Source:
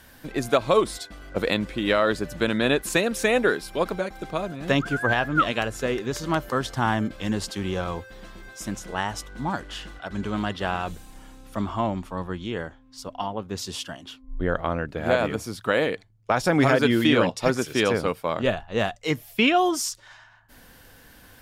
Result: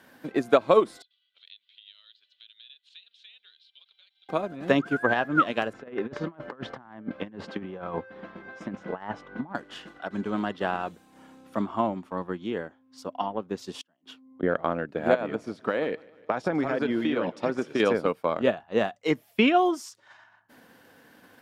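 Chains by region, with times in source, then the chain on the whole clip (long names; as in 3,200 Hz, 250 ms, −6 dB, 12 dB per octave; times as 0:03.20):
0:01.02–0:04.29: flat-topped band-pass 3,500 Hz, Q 3.4 + downward compressor 2 to 1, threshold −49 dBFS
0:05.73–0:09.55: low-pass filter 2,400 Hz + parametric band 350 Hz −4 dB 0.25 octaves + compressor whose output falls as the input rises −32 dBFS, ratio −0.5
0:13.81–0:14.43: high-pass filter 78 Hz 24 dB per octave + gate with flip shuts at −28 dBFS, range −28 dB
0:15.14–0:17.80: downward compressor 5 to 1, threshold −21 dBFS + high-frequency loss of the air 53 metres + feedback echo with a swinging delay time 150 ms, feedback 57%, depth 58 cents, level −19 dB
whole clip: Chebyshev high-pass filter 230 Hz, order 2; high-shelf EQ 3,200 Hz −11 dB; transient designer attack +3 dB, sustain −5 dB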